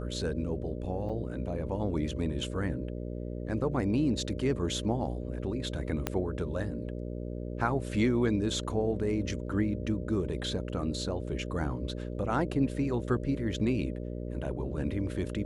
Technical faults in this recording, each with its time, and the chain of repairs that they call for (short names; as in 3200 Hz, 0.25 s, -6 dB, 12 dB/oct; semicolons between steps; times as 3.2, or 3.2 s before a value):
buzz 60 Hz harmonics 10 -37 dBFS
1.09–1.1 gap 5.8 ms
6.07 pop -14 dBFS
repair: de-click; de-hum 60 Hz, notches 10; interpolate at 1.09, 5.8 ms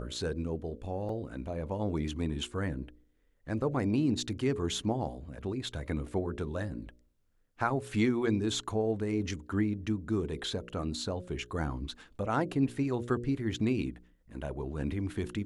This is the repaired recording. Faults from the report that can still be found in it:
6.07 pop